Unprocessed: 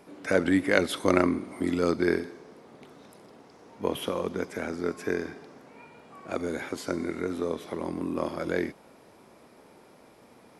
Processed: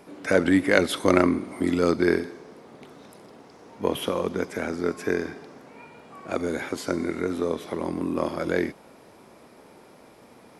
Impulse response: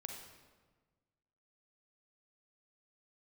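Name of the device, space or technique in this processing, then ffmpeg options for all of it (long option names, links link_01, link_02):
parallel distortion: -filter_complex "[0:a]asplit=2[link_01][link_02];[link_02]asoftclip=type=hard:threshold=-16.5dB,volume=-13dB[link_03];[link_01][link_03]amix=inputs=2:normalize=0,volume=2dB"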